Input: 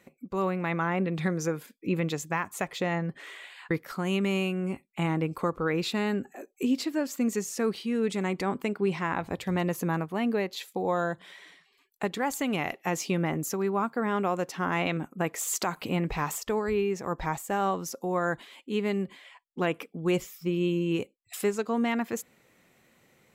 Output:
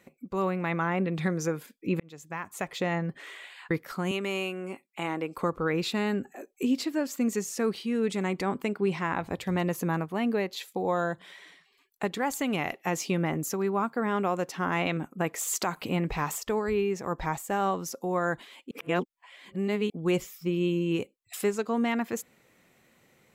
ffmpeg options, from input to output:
-filter_complex "[0:a]asettb=1/sr,asplit=3[s0][s1][s2];[s0]atrim=end=4.114[s3];[s1]atrim=start=4.11:end=5.37,asetpts=PTS-STARTPTS,afade=t=in:d=0.004:c=qsin,afade=t=out:st=1.256:d=0.004:c=qsin,highpass=330[s4];[s2]atrim=start=5.366[s5];[s3][s4]acrossfade=d=0.004:c1=hsin:c2=qsin[s6];[s6][s5]acrossfade=d=0.004:c1=qsin:c2=hsin,asplit=4[s7][s8][s9][s10];[s7]atrim=end=2,asetpts=PTS-STARTPTS,afade=t=out:st=1.996:d=0.004:c=hsin[s11];[s8]atrim=start=2:end=18.712,asetpts=PTS-STARTPTS,afade=t=in:d=0.78[s12];[s9]atrim=start=18.708:end=19.902,asetpts=PTS-STARTPTS,areverse[s13];[s10]atrim=start=19.898[s14];[s11][s12]concat=n=2:v=0:a=1[s15];[s15][s13]acrossfade=d=0.004:c1=hsin:c2=hsin[s16];[s16][s14]acrossfade=d=0.004:c1=hsin:c2=hsin"

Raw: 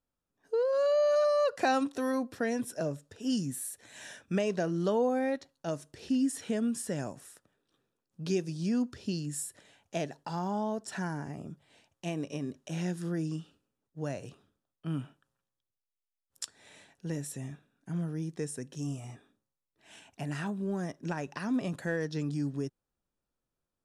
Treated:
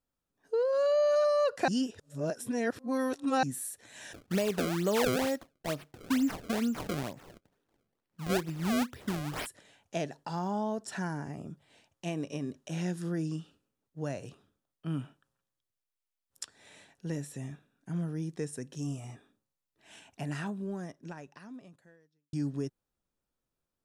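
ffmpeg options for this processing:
-filter_complex "[0:a]asplit=3[s0][s1][s2];[s0]afade=t=out:st=4.12:d=0.02[s3];[s1]acrusher=samples=28:mix=1:aa=0.000001:lfo=1:lforange=44.8:lforate=2.2,afade=t=in:st=4.12:d=0.02,afade=t=out:st=9.45:d=0.02[s4];[s2]afade=t=in:st=9.45:d=0.02[s5];[s3][s4][s5]amix=inputs=3:normalize=0,asettb=1/sr,asplit=3[s6][s7][s8];[s6]atrim=end=16.434[s9];[s7]atrim=start=16.43:end=18.53,asetpts=PTS-STARTPTS,afade=t=in:d=0.004:c=qsin,afade=t=out:st=2.096:d=0.004:c=qsin,acrossover=split=3600[s10][s11];[s11]acompressor=threshold=0.00562:ratio=4:attack=1:release=60[s12];[s10][s12]amix=inputs=2:normalize=0[s13];[s8]atrim=start=18.526[s14];[s9][s13]acrossfade=d=0.004:c1=hsin:c2=qsin[s15];[s15][s14]acrossfade=d=0.004:c1=qsin:c2=hsin,asplit=4[s16][s17][s18][s19];[s16]atrim=end=1.682[s20];[s17]atrim=start=1.678:end=3.432,asetpts=PTS-STARTPTS,areverse[s21];[s18]atrim=start=3.428:end=22.33,asetpts=PTS-STARTPTS,afade=t=out:st=16.892:d=2.01:c=qua[s22];[s19]atrim=start=22.33,asetpts=PTS-STARTPTS,afade=t=in:d=0.004:c=hsin[s23];[s20][s21]acrossfade=d=0.004:c1=hsin:c2=hsin[s24];[s22][s23]concat=n=2:v=0:a=1[s25];[s24][s25]acrossfade=d=0.004:c1=hsin:c2=hsin"

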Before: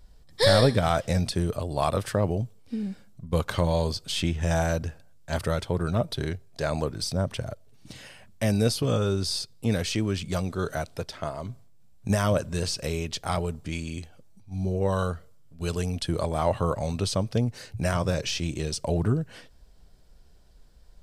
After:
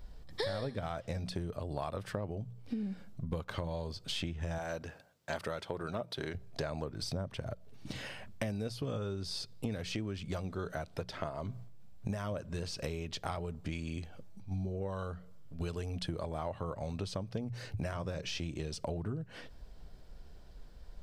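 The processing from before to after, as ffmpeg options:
-filter_complex "[0:a]asettb=1/sr,asplit=3[s0][s1][s2];[s0]atrim=end=4.584[s3];[s1]atrim=start=4.58:end=6.35,asetpts=PTS-STARTPTS,afade=t=in:d=0.004:c=qsin,afade=t=out:st=1.766:d=0.004:c=qsin,highpass=f=420:p=1[s4];[s2]atrim=start=6.346[s5];[s3][s4]acrossfade=d=0.004:c1=hsin:c2=qsin[s6];[s6][s5]acrossfade=d=0.004:c1=qsin:c2=hsin,equalizer=f=10000:t=o:w=1.7:g=-9.5,bandreject=f=60:t=h:w=6,bandreject=f=120:t=h:w=6,bandreject=f=180:t=h:w=6,acompressor=threshold=0.0126:ratio=10,volume=1.58"

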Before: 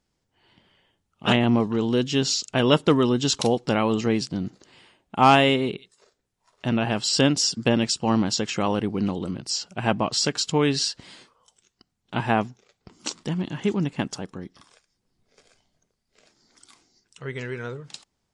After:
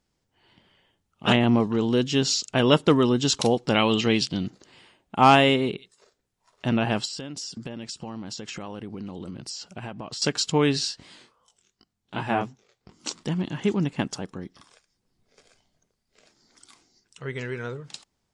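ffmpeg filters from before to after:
-filter_complex "[0:a]asettb=1/sr,asplit=3[s0][s1][s2];[s0]atrim=end=3.744[s3];[s1]atrim=start=3.74:end=4.47,asetpts=PTS-STARTPTS,afade=t=in:d=0.004:c=qsin,afade=t=out:st=0.726:d=0.004:c=qsin,equalizer=f=3200:t=o:w=0.97:g=12.5[s4];[s2]atrim=start=4.466[s5];[s3][s4]acrossfade=d=0.004:c1=hsin:c2=qsin[s6];[s6][s5]acrossfade=d=0.004:c1=qsin:c2=hsin,asettb=1/sr,asplit=3[s7][s8][s9];[s7]atrim=end=7.054[s10];[s8]atrim=start=7.05:end=10.22,asetpts=PTS-STARTPTS,afade=t=in:d=0.004:c=qsin,afade=t=out:st=3.166:d=0.004:c=qsin,acompressor=threshold=0.0251:ratio=8:attack=3.2:release=140:knee=1:detection=peak[s11];[s9]atrim=start=10.216[s12];[s10][s11]acrossfade=d=0.004:c1=hsin:c2=qsin[s13];[s13][s12]acrossfade=d=0.004:c1=qsin:c2=hsin,asplit=3[s14][s15][s16];[s14]afade=t=out:st=10.77:d=0.02[s17];[s15]flanger=delay=18.5:depth=6.9:speed=2.7,afade=t=in:st=10.77:d=0.02,afade=t=out:st=13.07:d=0.02[s18];[s16]afade=t=in:st=13.07:d=0.02[s19];[s17][s18][s19]amix=inputs=3:normalize=0"

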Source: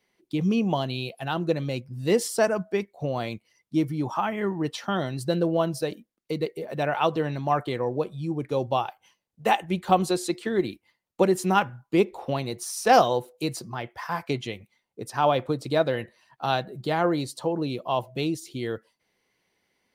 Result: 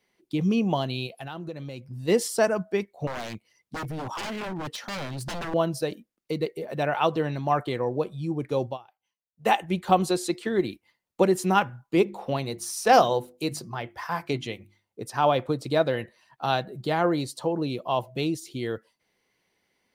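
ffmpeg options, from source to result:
-filter_complex "[0:a]asplit=3[s0][s1][s2];[s0]afade=t=out:st=1.06:d=0.02[s3];[s1]acompressor=threshold=0.0224:ratio=5:attack=3.2:release=140:knee=1:detection=peak,afade=t=in:st=1.06:d=0.02,afade=t=out:st=2.07:d=0.02[s4];[s2]afade=t=in:st=2.07:d=0.02[s5];[s3][s4][s5]amix=inputs=3:normalize=0,asettb=1/sr,asplit=3[s6][s7][s8];[s6]atrim=end=3.074[s9];[s7]atrim=start=3.07:end=5.54,asetpts=PTS-STARTPTS,afade=t=in:d=0.004:c=qsin,afade=t=out:st=2.466:d=0.004:c=qsin,aeval=exprs='0.0398*(abs(mod(val(0)/0.0398+3,4)-2)-1)':c=same[s10];[s8]atrim=start=5.536[s11];[s9][s10]acrossfade=d=0.004:c1=hsin:c2=qsin[s12];[s12][s11]acrossfade=d=0.004:c1=qsin:c2=hsin,asettb=1/sr,asplit=3[s13][s14][s15];[s13]atrim=end=11.864[s16];[s14]atrim=start=11.86:end=15.01,asetpts=PTS-STARTPTS,afade=t=in:d=0.004:c=qsin,afade=t=out:st=3.146:d=0.004:c=qsin,bandreject=f=50:t=h:w=6,bandreject=f=100:t=h:w=6,bandreject=f=150:t=h:w=6,bandreject=f=200:t=h:w=6,bandreject=f=250:t=h:w=6,bandreject=f=300:t=h:w=6,bandreject=f=350:t=h:w=6[s17];[s15]atrim=start=15.006[s18];[s16][s17]acrossfade=d=0.004:c1=hsin:c2=qsin[s19];[s19][s18]acrossfade=d=0.004:c1=qsin:c2=hsin,asplit=3[s20][s21][s22];[s20]atrim=end=8.78,asetpts=PTS-STARTPTS,afade=t=out:st=8.66:d=0.12:silence=0.0794328[s23];[s21]atrim=start=8.78:end=9.35,asetpts=PTS-STARTPTS,volume=0.0794[s24];[s22]atrim=start=9.35,asetpts=PTS-STARTPTS,afade=t=in:d=0.12:silence=0.0794328[s25];[s23][s24][s25]concat=n=3:v=0:a=1"

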